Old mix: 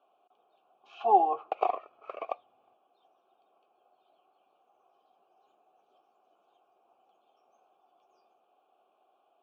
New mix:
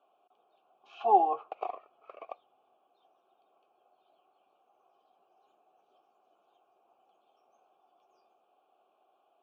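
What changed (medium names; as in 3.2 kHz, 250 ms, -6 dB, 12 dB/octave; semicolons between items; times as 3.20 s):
background -8.5 dB; reverb: off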